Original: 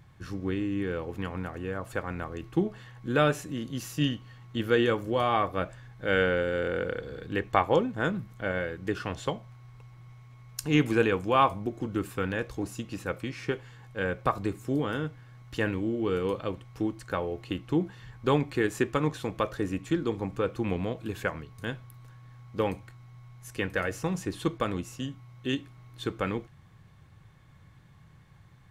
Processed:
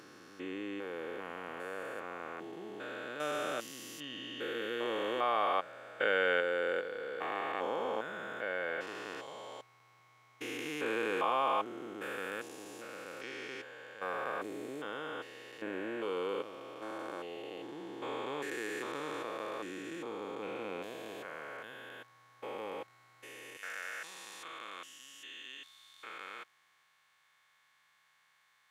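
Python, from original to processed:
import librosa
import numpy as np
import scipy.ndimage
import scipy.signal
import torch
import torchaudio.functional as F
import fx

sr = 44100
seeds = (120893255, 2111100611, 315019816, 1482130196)

y = fx.spec_steps(x, sr, hold_ms=400)
y = fx.highpass(y, sr, hz=fx.steps((0.0, 500.0), (23.57, 1300.0)), slope=12)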